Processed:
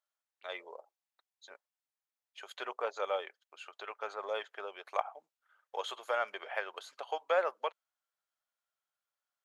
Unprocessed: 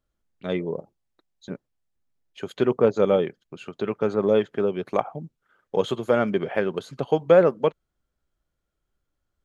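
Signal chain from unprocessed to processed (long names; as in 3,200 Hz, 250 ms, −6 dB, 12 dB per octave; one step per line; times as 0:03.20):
high-pass filter 700 Hz 24 dB per octave
level −5.5 dB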